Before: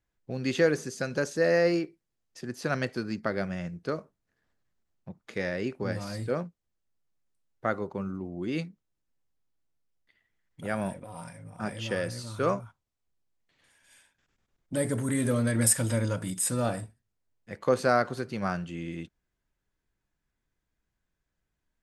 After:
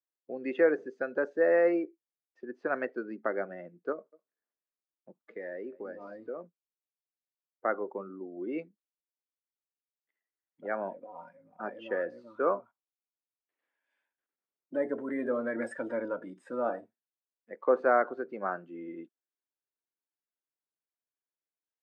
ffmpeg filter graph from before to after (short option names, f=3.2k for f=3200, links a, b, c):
-filter_complex "[0:a]asettb=1/sr,asplit=3[a][b][c];[a]atrim=end=3.924[d];[b]atrim=start=3.92:end=6.44,asetpts=PTS-STARTPTS,afade=t=in:d=0.004:c=qsin,afade=t=out:st=2.516:d=0.004:c=qsin,aecho=1:1:205:0.0891,atrim=end_sample=111132,acompressor=threshold=-33dB:ratio=4:attack=3.2:release=140:knee=1:detection=peak[e];[c]atrim=start=6.436[f];[d][e]acrossfade=d=0.004:c1=hsin:c2=qsin[g];[g][f]acrossfade=d=0.004:c1=qsin:c2=hsin,lowpass=1.9k,afftdn=nr=16:nf=-41,highpass=f=300:w=0.5412,highpass=f=300:w=1.3066"